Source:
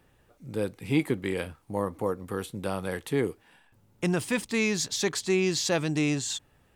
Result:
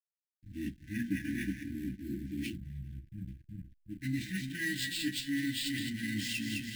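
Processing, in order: frequency-domain pitch shifter -5 st; graphic EQ 250/1000/2000/4000/8000 Hz +4/-11/+10/+12/-9 dB; two-band feedback delay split 1.1 kHz, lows 369 ms, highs 211 ms, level -9 dB; reverse; compression 8:1, threshold -31 dBFS, peak gain reduction 14 dB; reverse; time-frequency box 2.56–3.90 s, 200–8400 Hz -20 dB; sample-rate reducer 12 kHz, jitter 0%; on a send at -2.5 dB: reverberation RT60 0.20 s, pre-delay 3 ms; on the sum: hysteresis with a dead band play -38.5 dBFS; brick-wall FIR band-stop 350–1500 Hz; trim -3 dB

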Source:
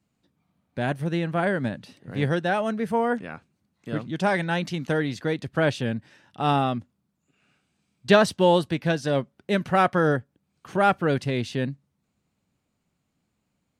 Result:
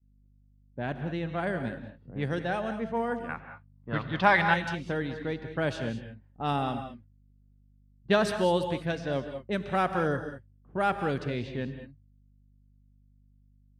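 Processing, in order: hum 50 Hz, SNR 19 dB; expander -37 dBFS; 3.29–4.54 s: graphic EQ 125/1000/2000/4000/8000 Hz +7/+12/+8/+10/-8 dB; level-controlled noise filter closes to 420 Hz, open at -18 dBFS; gated-style reverb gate 230 ms rising, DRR 8 dB; trim -7 dB

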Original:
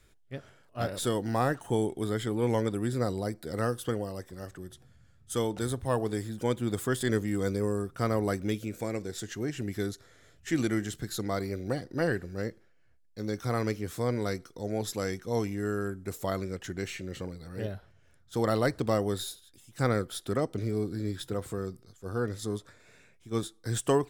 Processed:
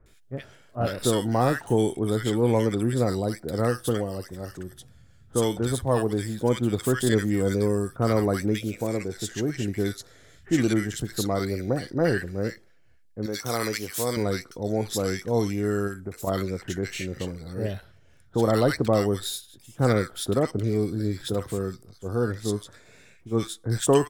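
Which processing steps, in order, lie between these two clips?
13.26–14.17 s: tilt EQ +3 dB/octave; 15.87–16.27 s: compression, threshold -36 dBFS, peak gain reduction 7.5 dB; bands offset in time lows, highs 60 ms, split 1.3 kHz; trim +6 dB

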